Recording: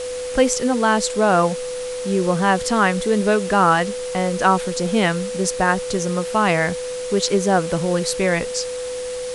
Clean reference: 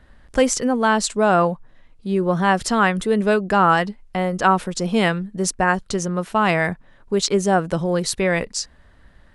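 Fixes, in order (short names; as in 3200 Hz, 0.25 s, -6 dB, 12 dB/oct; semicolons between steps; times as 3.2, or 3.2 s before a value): notch 500 Hz, Q 30; noise print and reduce 22 dB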